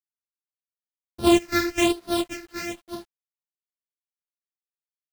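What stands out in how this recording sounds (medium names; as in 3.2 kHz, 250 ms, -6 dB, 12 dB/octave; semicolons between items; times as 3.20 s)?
a buzz of ramps at a fixed pitch in blocks of 128 samples; phasing stages 6, 1.1 Hz, lowest notch 790–2200 Hz; a quantiser's noise floor 10-bit, dither none; a shimmering, thickened sound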